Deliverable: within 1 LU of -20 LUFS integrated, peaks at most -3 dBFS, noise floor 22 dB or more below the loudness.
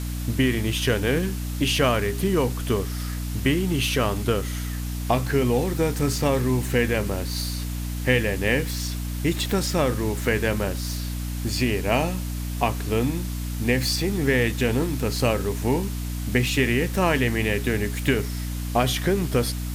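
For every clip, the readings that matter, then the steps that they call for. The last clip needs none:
hum 60 Hz; highest harmonic 300 Hz; hum level -27 dBFS; noise floor -29 dBFS; noise floor target -46 dBFS; loudness -24.0 LUFS; peak level -5.5 dBFS; loudness target -20.0 LUFS
-> hum notches 60/120/180/240/300 Hz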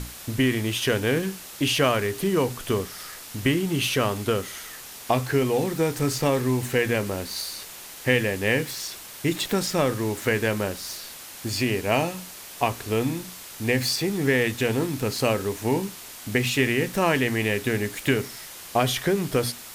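hum not found; noise floor -41 dBFS; noise floor target -47 dBFS
-> noise reduction 6 dB, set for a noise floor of -41 dBFS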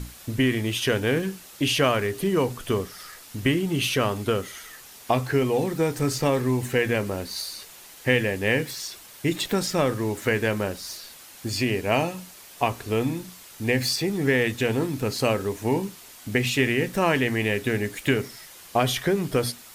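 noise floor -46 dBFS; noise floor target -47 dBFS
-> noise reduction 6 dB, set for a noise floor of -46 dBFS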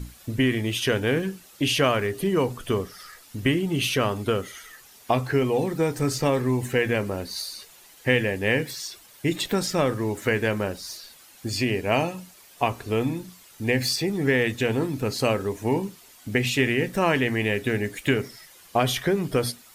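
noise floor -51 dBFS; loudness -25.0 LUFS; peak level -6.0 dBFS; loudness target -20.0 LUFS
-> trim +5 dB; peak limiter -3 dBFS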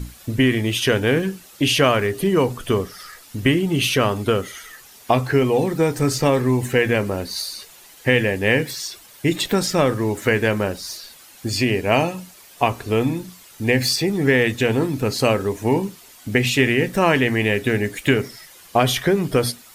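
loudness -20.0 LUFS; peak level -3.0 dBFS; noise floor -46 dBFS

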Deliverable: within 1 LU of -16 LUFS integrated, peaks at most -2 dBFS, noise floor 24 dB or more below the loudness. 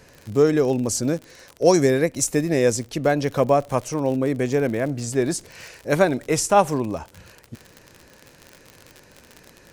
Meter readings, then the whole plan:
tick rate 56 per s; loudness -21.5 LUFS; peak level -2.5 dBFS; loudness target -16.0 LUFS
-> de-click; trim +5.5 dB; peak limiter -2 dBFS

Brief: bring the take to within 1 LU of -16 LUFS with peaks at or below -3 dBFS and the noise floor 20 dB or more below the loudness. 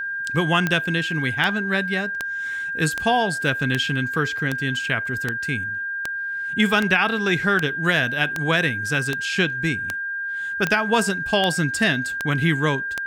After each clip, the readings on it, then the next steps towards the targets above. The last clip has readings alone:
clicks found 17; steady tone 1.6 kHz; tone level -25 dBFS; loudness -21.5 LUFS; peak level -4.5 dBFS; loudness target -16.0 LUFS
-> de-click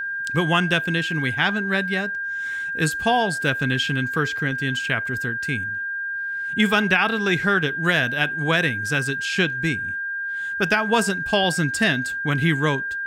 clicks found 0; steady tone 1.6 kHz; tone level -25 dBFS
-> band-stop 1.6 kHz, Q 30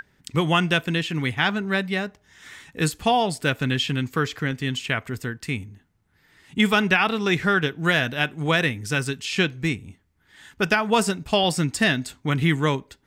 steady tone not found; loudness -23.0 LUFS; peak level -5.5 dBFS; loudness target -16.0 LUFS
-> trim +7 dB; peak limiter -3 dBFS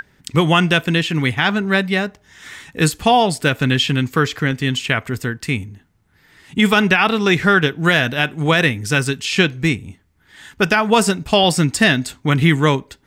loudness -16.5 LUFS; peak level -3.0 dBFS; noise floor -58 dBFS

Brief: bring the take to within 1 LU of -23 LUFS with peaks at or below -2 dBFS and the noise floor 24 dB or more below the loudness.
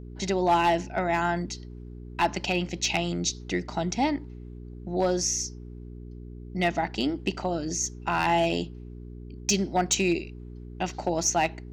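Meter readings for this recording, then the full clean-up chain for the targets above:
clipped samples 0.3%; clipping level -15.5 dBFS; hum 60 Hz; highest harmonic 420 Hz; hum level -38 dBFS; loudness -27.0 LUFS; peak level -15.5 dBFS; loudness target -23.0 LUFS
-> clip repair -15.5 dBFS; de-hum 60 Hz, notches 7; trim +4 dB

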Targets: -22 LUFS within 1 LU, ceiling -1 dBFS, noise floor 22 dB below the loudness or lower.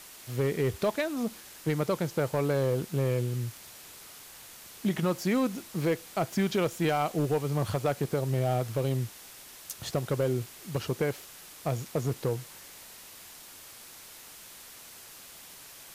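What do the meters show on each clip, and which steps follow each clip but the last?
clipped samples 0.7%; clipping level -20.0 dBFS; noise floor -49 dBFS; noise floor target -53 dBFS; loudness -30.5 LUFS; peak level -20.0 dBFS; loudness target -22.0 LUFS
-> clip repair -20 dBFS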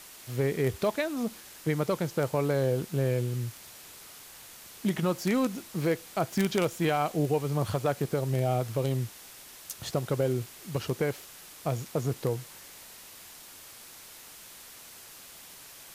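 clipped samples 0.0%; noise floor -49 dBFS; noise floor target -52 dBFS
-> noise print and reduce 6 dB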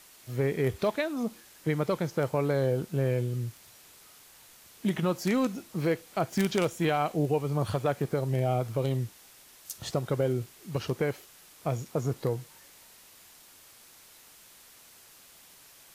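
noise floor -55 dBFS; loudness -30.0 LUFS; peak level -11.0 dBFS; loudness target -22.0 LUFS
-> trim +8 dB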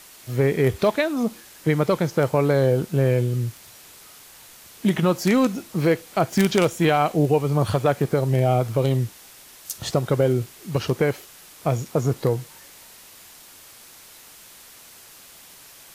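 loudness -22.0 LUFS; peak level -3.0 dBFS; noise floor -47 dBFS

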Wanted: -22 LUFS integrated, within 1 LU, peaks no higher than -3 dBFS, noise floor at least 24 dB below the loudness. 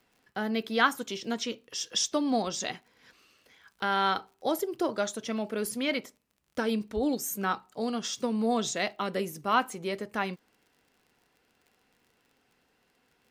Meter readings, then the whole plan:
tick rate 43 per s; loudness -30.5 LUFS; peak level -10.0 dBFS; loudness target -22.0 LUFS
-> de-click; trim +8.5 dB; peak limiter -3 dBFS

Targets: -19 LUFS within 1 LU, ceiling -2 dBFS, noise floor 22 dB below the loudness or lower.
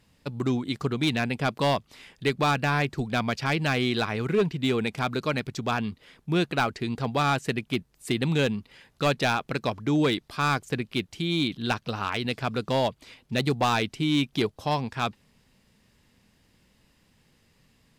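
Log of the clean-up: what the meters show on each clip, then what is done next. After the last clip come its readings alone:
clipped samples 0.6%; clipping level -17.0 dBFS; loudness -27.0 LUFS; peak level -17.0 dBFS; loudness target -19.0 LUFS
-> clip repair -17 dBFS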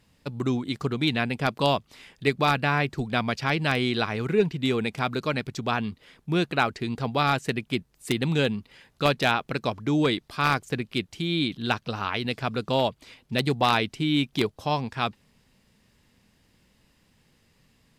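clipped samples 0.0%; loudness -26.5 LUFS; peak level -8.0 dBFS; loudness target -19.0 LUFS
-> trim +7.5 dB; peak limiter -2 dBFS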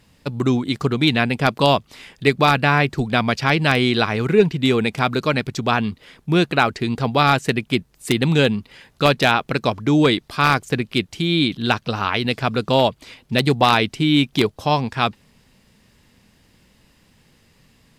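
loudness -19.0 LUFS; peak level -2.0 dBFS; noise floor -58 dBFS

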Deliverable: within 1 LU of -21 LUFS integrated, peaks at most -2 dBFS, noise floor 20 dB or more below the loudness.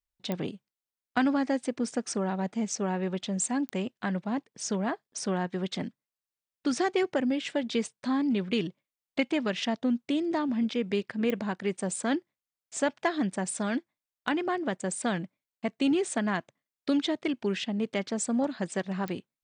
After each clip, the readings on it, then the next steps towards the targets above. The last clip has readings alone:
clicks found 4; loudness -30.5 LUFS; peak level -13.0 dBFS; loudness target -21.0 LUFS
-> de-click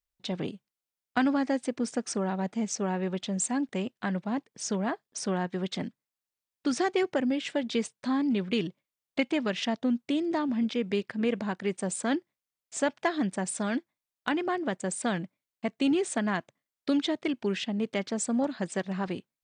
clicks found 0; loudness -30.5 LUFS; peak level -13.0 dBFS; loudness target -21.0 LUFS
-> trim +9.5 dB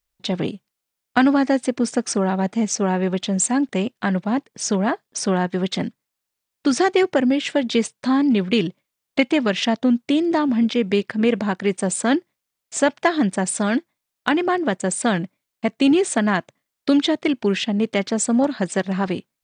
loudness -21.0 LUFS; peak level -3.5 dBFS; noise floor -82 dBFS

